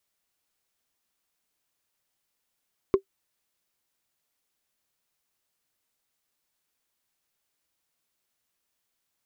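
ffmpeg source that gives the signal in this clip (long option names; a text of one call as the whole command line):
ffmpeg -f lavfi -i "aevalsrc='0.299*pow(10,-3*t/0.09)*sin(2*PI*389*t)+0.0841*pow(10,-3*t/0.027)*sin(2*PI*1072.5*t)+0.0237*pow(10,-3*t/0.012)*sin(2*PI*2102.2*t)+0.00668*pow(10,-3*t/0.007)*sin(2*PI*3474.9*t)+0.00188*pow(10,-3*t/0.004)*sin(2*PI*5189.3*t)':duration=0.45:sample_rate=44100" out.wav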